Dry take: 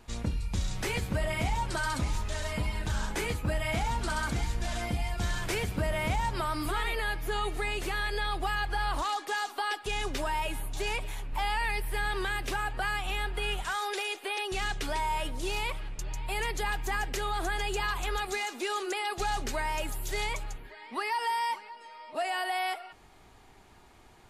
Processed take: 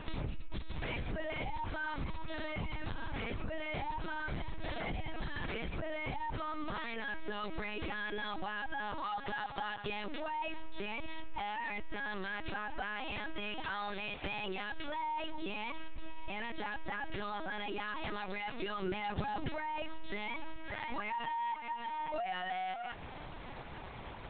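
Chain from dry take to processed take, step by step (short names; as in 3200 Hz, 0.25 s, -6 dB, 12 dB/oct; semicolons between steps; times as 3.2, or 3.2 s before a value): limiter -29 dBFS, peak gain reduction 9 dB; LPC vocoder at 8 kHz pitch kept; compressor 12:1, threshold -44 dBFS, peak gain reduction 16.5 dB; 18.82–19.49 bell 110 Hz +7.5 dB 2.7 oct; gain +10 dB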